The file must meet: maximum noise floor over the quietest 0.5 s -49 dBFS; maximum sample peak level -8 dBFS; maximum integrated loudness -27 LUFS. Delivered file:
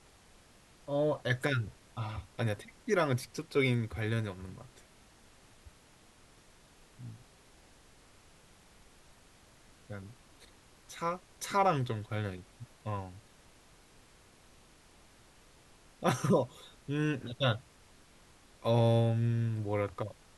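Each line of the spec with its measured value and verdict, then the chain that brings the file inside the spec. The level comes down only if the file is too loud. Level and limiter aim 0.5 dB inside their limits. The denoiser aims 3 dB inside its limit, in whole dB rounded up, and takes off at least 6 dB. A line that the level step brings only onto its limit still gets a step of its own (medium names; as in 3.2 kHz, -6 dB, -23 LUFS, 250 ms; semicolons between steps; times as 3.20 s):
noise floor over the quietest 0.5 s -61 dBFS: pass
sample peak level -14.0 dBFS: pass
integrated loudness -33.0 LUFS: pass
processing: none needed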